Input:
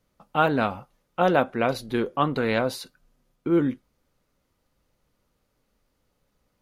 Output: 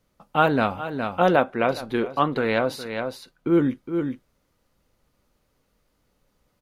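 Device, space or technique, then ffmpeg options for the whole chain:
ducked delay: -filter_complex "[0:a]asplit=3[a][b][c];[b]adelay=414,volume=-5.5dB[d];[c]apad=whole_len=310006[e];[d][e]sidechaincompress=threshold=-35dB:ratio=6:attack=16:release=280[f];[a][f]amix=inputs=2:normalize=0,asettb=1/sr,asplit=3[g][h][i];[g]atrim=end=1.364[j];[h]atrim=start=1.36:end=3.47,asetpts=PTS-STARTPTS,afade=t=in:d=0.004:c=qsin,afade=t=out:st=2.106:d=0.004:c=qsin,bass=f=250:g=-4,treble=f=4k:g=-5[k];[i]atrim=start=3.466[l];[j][k]acrossfade=d=0.004:c1=hsin:c2=qsin[m];[m][l]acrossfade=d=0.004:c1=qsin:c2=hsin,volume=2dB"

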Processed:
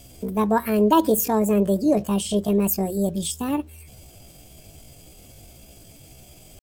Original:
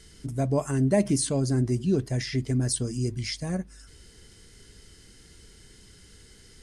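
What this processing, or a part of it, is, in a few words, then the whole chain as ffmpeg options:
chipmunk voice: -af "asetrate=70004,aresample=44100,atempo=0.629961,volume=5dB"

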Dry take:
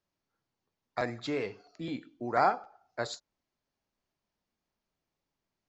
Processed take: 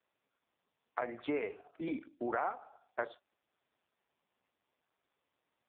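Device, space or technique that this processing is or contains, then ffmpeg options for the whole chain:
voicemail: -af "highpass=310,lowpass=2.7k,acompressor=threshold=-34dB:ratio=8,volume=4dB" -ar 8000 -c:a libopencore_amrnb -b:a 4750

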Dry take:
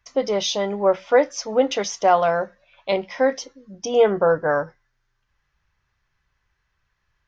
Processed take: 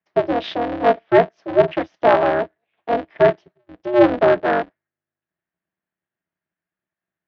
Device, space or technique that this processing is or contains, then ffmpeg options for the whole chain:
ring modulator pedal into a guitar cabinet: -filter_complex "[0:a]lowshelf=f=120:g=-3.5,afwtdn=0.0355,asettb=1/sr,asplit=3[a][b][c];[a]atrim=end=3.014[d];[b]atrim=start=3.01:end=3.41,asetpts=PTS-STARTPTS,afade=t=in:d=0.004:c=qsin,afade=t=out:st=0.396:d=0.004:c=qsin,lowshelf=f=450:g=3[e];[c]atrim=start=3.406[f];[d][e]acrossfade=d=0.004:c1=hsin:c2=qsin[g];[g][f]acrossfade=d=0.004:c1=qsin:c2=hsin,aeval=exprs='val(0)*sgn(sin(2*PI*120*n/s))':c=same,highpass=97,equalizer=f=120:t=q:w=4:g=-8,equalizer=f=180:t=q:w=4:g=6,equalizer=f=330:t=q:w=4:g=7,equalizer=f=650:t=q:w=4:g=9,equalizer=f=1.7k:t=q:w=4:g=5,lowpass=f=3.5k:w=0.5412,lowpass=f=3.5k:w=1.3066,volume=-2dB"

